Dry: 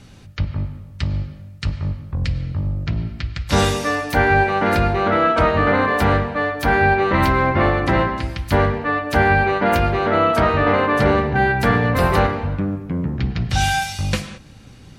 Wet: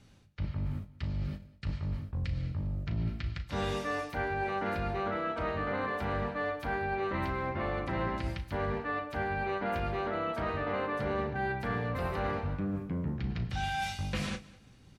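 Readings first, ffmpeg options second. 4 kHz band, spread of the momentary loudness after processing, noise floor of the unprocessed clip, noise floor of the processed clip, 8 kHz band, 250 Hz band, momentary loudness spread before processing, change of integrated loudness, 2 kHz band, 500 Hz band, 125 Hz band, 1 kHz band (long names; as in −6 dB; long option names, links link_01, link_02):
−15.5 dB, 4 LU, −42 dBFS, −57 dBFS, below −15 dB, −15.0 dB, 10 LU, −15.5 dB, −16.5 dB, −15.0 dB, −14.0 dB, −16.0 dB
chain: -filter_complex "[0:a]acrossover=split=4100[link_01][link_02];[link_02]acompressor=threshold=-41dB:ratio=4:attack=1:release=60[link_03];[link_01][link_03]amix=inputs=2:normalize=0,agate=range=-15dB:threshold=-34dB:ratio=16:detection=peak,areverse,acompressor=threshold=-31dB:ratio=8,areverse,asplit=2[link_04][link_05];[link_05]adelay=36,volume=-12dB[link_06];[link_04][link_06]amix=inputs=2:normalize=0,aecho=1:1:201|402:0.0891|0.0241"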